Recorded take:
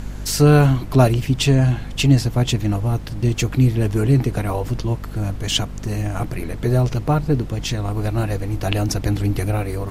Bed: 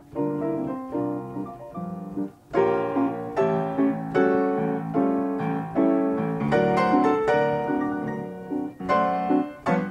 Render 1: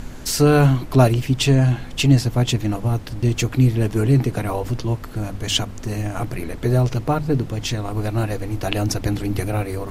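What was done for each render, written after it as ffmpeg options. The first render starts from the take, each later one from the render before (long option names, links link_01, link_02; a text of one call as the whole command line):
ffmpeg -i in.wav -af "bandreject=frequency=50:width_type=h:width=6,bandreject=frequency=100:width_type=h:width=6,bandreject=frequency=150:width_type=h:width=6,bandreject=frequency=200:width_type=h:width=6" out.wav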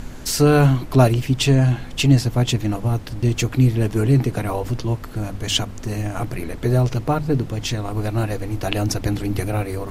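ffmpeg -i in.wav -af anull out.wav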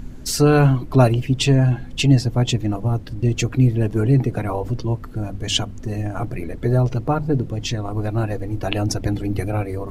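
ffmpeg -i in.wav -af "afftdn=noise_reduction=11:noise_floor=-34" out.wav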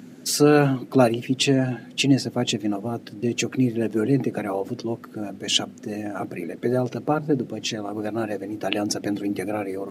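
ffmpeg -i in.wav -af "highpass=frequency=180:width=0.5412,highpass=frequency=180:width=1.3066,equalizer=frequency=1000:width=3.6:gain=-7.5" out.wav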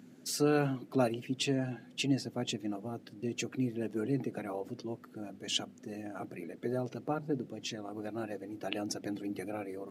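ffmpeg -i in.wav -af "volume=-12dB" out.wav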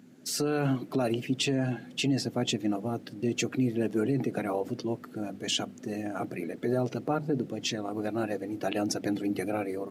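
ffmpeg -i in.wav -af "alimiter=level_in=2.5dB:limit=-24dB:level=0:latency=1:release=40,volume=-2.5dB,dynaudnorm=framelen=210:gausssize=3:maxgain=8dB" out.wav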